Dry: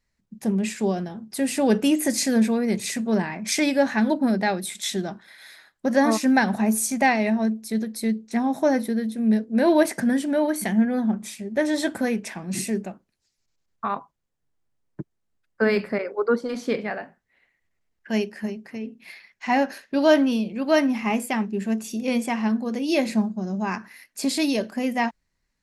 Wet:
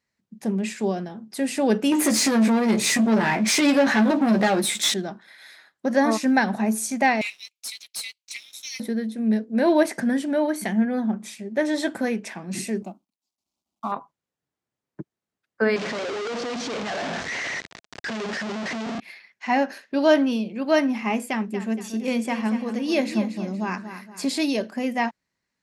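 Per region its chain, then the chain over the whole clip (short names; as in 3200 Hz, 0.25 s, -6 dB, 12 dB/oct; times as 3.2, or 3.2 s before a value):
1.92–4.94 compressor 3:1, threshold -23 dBFS + sample leveller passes 3 + doubler 14 ms -6 dB
7.21–8.8 steep high-pass 2200 Hz 96 dB/oct + sample leveller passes 3
12.82–13.92 G.711 law mismatch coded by A + low shelf 370 Hz +6.5 dB + fixed phaser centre 460 Hz, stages 6
15.76–19 infinite clipping + LPF 6800 Hz 24 dB/oct + bell 670 Hz +3 dB 0.22 oct
21.27–24.41 bell 800 Hz -2.5 dB 0.42 oct + feedback echo 0.234 s, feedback 41%, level -10.5 dB
whole clip: Bessel high-pass 160 Hz; high shelf 11000 Hz -10.5 dB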